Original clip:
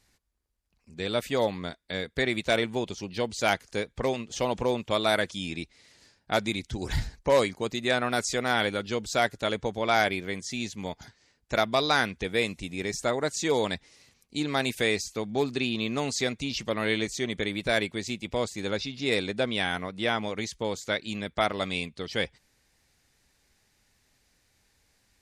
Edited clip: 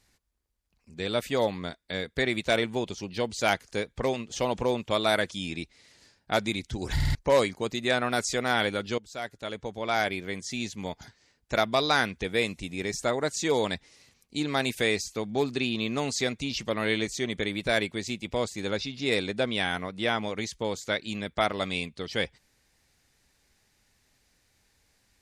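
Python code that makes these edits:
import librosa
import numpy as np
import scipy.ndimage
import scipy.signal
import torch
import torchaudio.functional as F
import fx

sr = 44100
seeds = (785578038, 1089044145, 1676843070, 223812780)

y = fx.edit(x, sr, fx.stutter_over(start_s=6.95, slice_s=0.05, count=4),
    fx.fade_in_from(start_s=8.98, length_s=1.56, floor_db=-16.0), tone=tone)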